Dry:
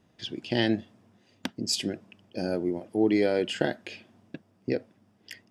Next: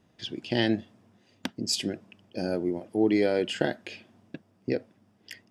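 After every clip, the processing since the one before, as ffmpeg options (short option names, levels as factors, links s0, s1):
-af anull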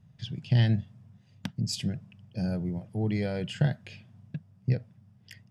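-af "lowshelf=f=210:t=q:w=3:g=13.5,volume=0.501"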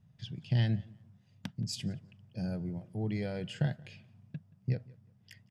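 -filter_complex "[0:a]asplit=2[s0][s1];[s1]adelay=177,lowpass=f=3800:p=1,volume=0.0708,asplit=2[s2][s3];[s3]adelay=177,lowpass=f=3800:p=1,volume=0.24[s4];[s0][s2][s4]amix=inputs=3:normalize=0,volume=0.531"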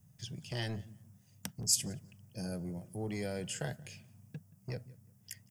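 -filter_complex "[0:a]acrossover=split=340[s0][s1];[s0]asoftclip=type=tanh:threshold=0.0126[s2];[s1]aexciter=amount=7.6:drive=4.7:freq=5700[s3];[s2][s3]amix=inputs=2:normalize=0"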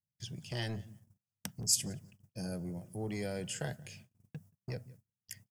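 -af "agate=range=0.0224:threshold=0.00178:ratio=16:detection=peak"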